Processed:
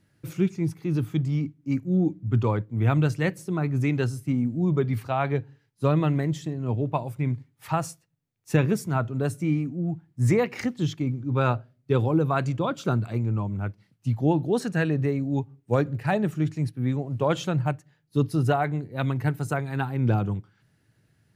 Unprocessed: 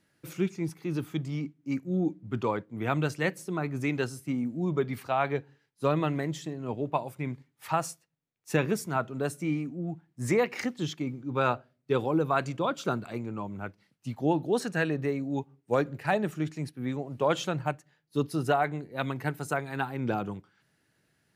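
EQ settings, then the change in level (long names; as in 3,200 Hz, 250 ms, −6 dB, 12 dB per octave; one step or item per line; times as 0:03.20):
parametric band 110 Hz +8 dB 0.34 octaves
low-shelf EQ 200 Hz +11.5 dB
0.0 dB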